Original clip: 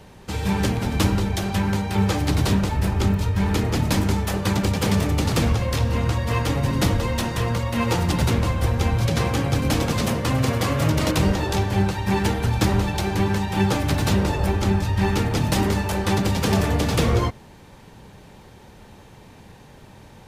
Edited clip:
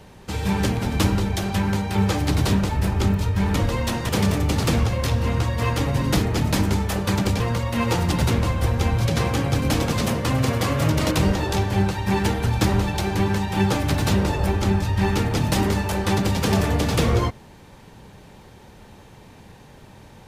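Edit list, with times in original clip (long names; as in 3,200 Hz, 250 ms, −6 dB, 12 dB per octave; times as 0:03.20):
0:03.56–0:04.78: swap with 0:06.87–0:07.40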